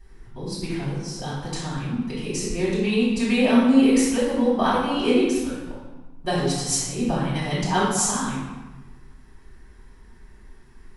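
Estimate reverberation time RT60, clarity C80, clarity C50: 1.2 s, 2.5 dB, −0.5 dB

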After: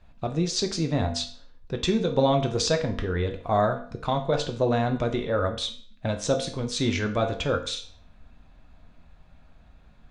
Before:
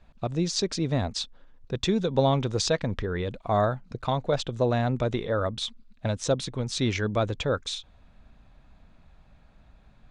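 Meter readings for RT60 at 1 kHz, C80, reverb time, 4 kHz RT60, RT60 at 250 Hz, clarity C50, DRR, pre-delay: 0.45 s, 14.0 dB, 0.50 s, 0.45 s, 0.50 s, 10.5 dB, 4.0 dB, 4 ms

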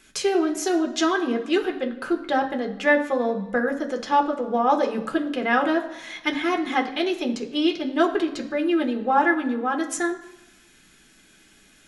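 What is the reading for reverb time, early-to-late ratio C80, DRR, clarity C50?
1.0 s, 14.0 dB, 2.5 dB, 11.5 dB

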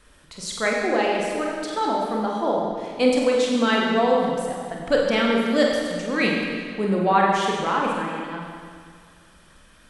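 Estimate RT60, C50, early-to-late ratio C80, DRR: 2.0 s, 0.0 dB, 1.5 dB, −2.0 dB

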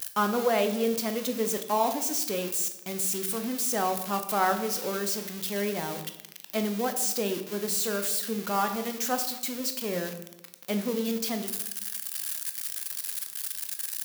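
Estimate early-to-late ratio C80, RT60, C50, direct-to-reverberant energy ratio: 12.5 dB, 0.90 s, 10.0 dB, 6.5 dB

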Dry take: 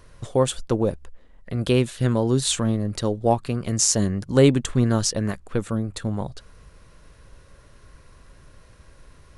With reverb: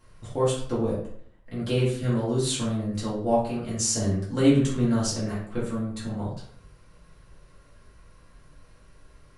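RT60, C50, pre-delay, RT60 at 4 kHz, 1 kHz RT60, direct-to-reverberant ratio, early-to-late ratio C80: 0.60 s, 3.5 dB, 3 ms, 0.40 s, 0.55 s, −8.0 dB, 8.0 dB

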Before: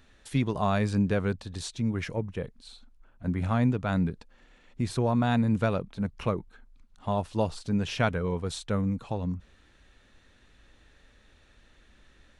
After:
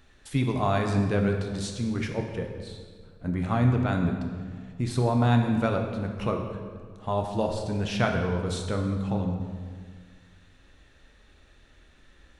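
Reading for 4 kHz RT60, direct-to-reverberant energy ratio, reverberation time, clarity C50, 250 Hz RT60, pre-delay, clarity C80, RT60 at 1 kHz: 1.3 s, 2.5 dB, 1.8 s, 5.0 dB, 2.0 s, 3 ms, 6.5 dB, 1.7 s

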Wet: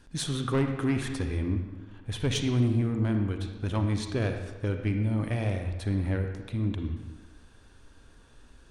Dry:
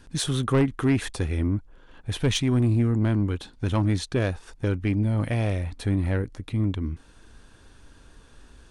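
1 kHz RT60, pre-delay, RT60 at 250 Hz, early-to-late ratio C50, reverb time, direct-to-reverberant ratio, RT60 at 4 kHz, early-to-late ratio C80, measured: 1.4 s, 38 ms, 1.2 s, 5.5 dB, 1.4 s, 5.0 dB, 1.0 s, 7.5 dB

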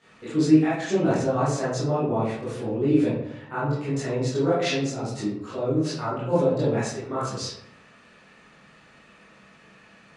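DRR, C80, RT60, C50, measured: −12.5 dB, 4.5 dB, 0.80 s, −0.5 dB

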